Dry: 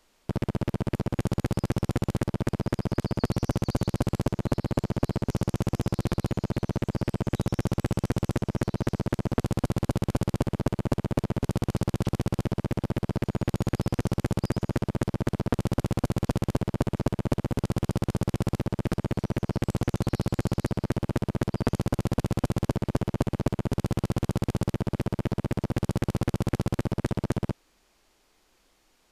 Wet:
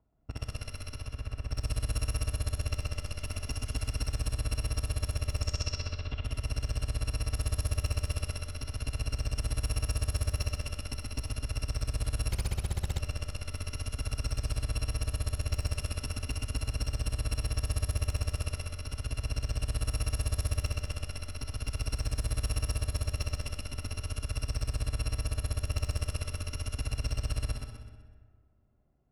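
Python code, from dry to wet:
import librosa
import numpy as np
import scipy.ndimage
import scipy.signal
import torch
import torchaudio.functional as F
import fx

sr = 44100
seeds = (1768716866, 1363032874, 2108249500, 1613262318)

y = fx.bit_reversed(x, sr, seeds[0], block=256)
y = scipy.signal.sosfilt(scipy.signal.butter(2, 54.0, 'highpass', fs=sr, output='sos'), y)
y = fx.low_shelf(y, sr, hz=280.0, db=9.5)
y = fx.level_steps(y, sr, step_db=15, at=(0.94, 1.48))
y = 10.0 ** (-21.5 / 20.0) * np.tanh(y / 10.0 ** (-21.5 / 20.0))
y = fx.lowpass_res(y, sr, hz=fx.line((5.41, 7300.0), (6.22, 3000.0)), q=4.6, at=(5.41, 6.22), fade=0.02)
y = fx.env_lowpass(y, sr, base_hz=610.0, full_db=-22.0)
y = fx.echo_feedback(y, sr, ms=126, feedback_pct=37, wet_db=-5)
y = fx.rev_freeverb(y, sr, rt60_s=1.8, hf_ratio=0.55, predelay_ms=10, drr_db=7.0)
y = fx.doppler_dist(y, sr, depth_ms=0.9, at=(12.31, 13.02))
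y = F.gain(torch.from_numpy(y), -1.5).numpy()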